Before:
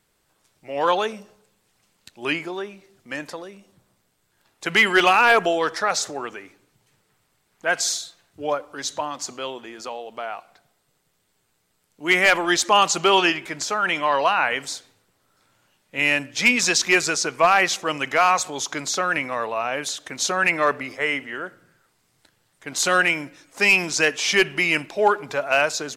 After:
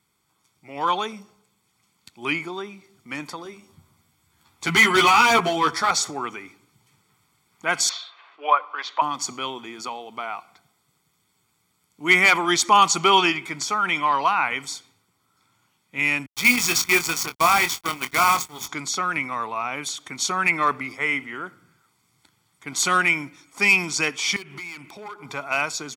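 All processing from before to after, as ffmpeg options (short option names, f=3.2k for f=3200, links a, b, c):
-filter_complex "[0:a]asettb=1/sr,asplit=3[a][b][c];[a]atrim=end=3.444[d];[b]atrim=start=3.44:end=5.91,asetpts=PTS-STARTPTS,afade=t=in:d=0.004:c=qsin,afade=t=out:st=2.466:d=0.004:c=qsin,equalizer=f=88:w=1.9:g=9.5,asoftclip=type=hard:threshold=-15.5dB,asplit=2[e][f];[f]adelay=13,volume=-3dB[g];[e][g]amix=inputs=2:normalize=0,atrim=end_sample=108927[h];[c]atrim=start=5.906[i];[d][h]acrossfade=d=0.004:c1=hsin:c2=qsin[j];[j][i]acrossfade=d=0.004:c1=qsin:c2=hsin,asettb=1/sr,asplit=3[k][l][m];[k]atrim=end=7.894[n];[l]atrim=start=7.89:end=9.02,asetpts=PTS-STARTPTS,afade=t=in:d=0.004:c=qsin,afade=t=out:st=1.126:d=0.004:c=qsin,acompressor=mode=upward:threshold=-44dB:ratio=2.5:attack=3.2:release=140:knee=2.83:detection=peak,highpass=f=470:w=0.5412,highpass=f=470:w=1.3066,equalizer=f=640:t=q:w=4:g=4,equalizer=f=1.1k:t=q:w=4:g=9,equalizer=f=1.7k:t=q:w=4:g=7,equalizer=f=2.7k:t=q:w=4:g=7,lowpass=f=3.7k:w=0.5412,lowpass=f=3.7k:w=1.3066[o];[m]atrim=start=9.016[p];[n][o]acrossfade=d=0.004:c1=hsin:c2=qsin[q];[q][p]acrossfade=d=0.004:c1=qsin:c2=hsin,asettb=1/sr,asplit=3[r][s][t];[r]atrim=end=16.264[u];[s]atrim=start=16.26:end=18.68,asetpts=PTS-STARTPTS,afade=t=in:d=0.004:c=qsin,afade=t=out:st=2.416:d=0.004:c=qsin,agate=range=-33dB:threshold=-28dB:ratio=3:release=100:detection=peak,acrusher=bits=4:dc=4:mix=0:aa=0.000001,asplit=2[v][w];[w]adelay=24,volume=-9dB[x];[v][x]amix=inputs=2:normalize=0,atrim=end_sample=106722[y];[t]atrim=start=18.676[z];[u][y]acrossfade=d=0.004:c1=hsin:c2=qsin[aa];[aa][z]acrossfade=d=0.004:c1=qsin:c2=hsin,asettb=1/sr,asplit=3[ab][ac][ad];[ab]atrim=end=24.364[ae];[ac]atrim=start=24.36:end=25.25,asetpts=PTS-STARTPTS,afade=t=in:d=0.004:c=qsin,afade=t=out:st=0.886:d=0.004:c=qsin,acompressor=threshold=-34dB:ratio=3:attack=3.2:release=140:knee=1:detection=peak,aeval=exprs='0.0422*(abs(mod(val(0)/0.0422+3,4)-2)-1)':c=same[af];[ad]atrim=start=25.246[ag];[ae][af]acrossfade=d=0.004:c1=hsin:c2=qsin[ah];[ah][ag]acrossfade=d=0.004:c1=qsin:c2=hsin,highpass=87,aecho=1:1:0.9:0.65,dynaudnorm=f=180:g=31:m=11.5dB,volume=-3.5dB"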